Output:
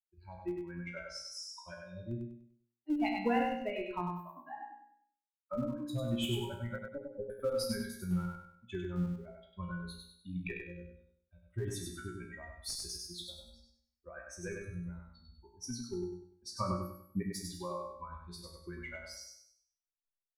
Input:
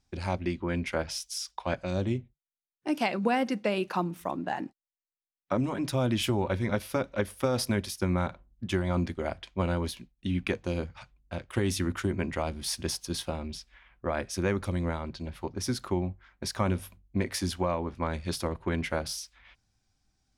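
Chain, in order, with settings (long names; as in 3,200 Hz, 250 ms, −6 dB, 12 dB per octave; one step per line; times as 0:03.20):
spectral dynamics exaggerated over time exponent 3
tuned comb filter 59 Hz, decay 0.5 s, harmonics all, mix 90%
in parallel at −12 dB: comparator with hysteresis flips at −37.5 dBFS
0:06.78–0:07.30: on the sum: elliptic low-pass filter 790 Hz, stop band 40 dB
0:16.45–0:17.23: parametric band 470 Hz +11.5 dB 2.1 octaves
on a send: repeating echo 98 ms, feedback 36%, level −3.5 dB
on the sum: level +6.5 dB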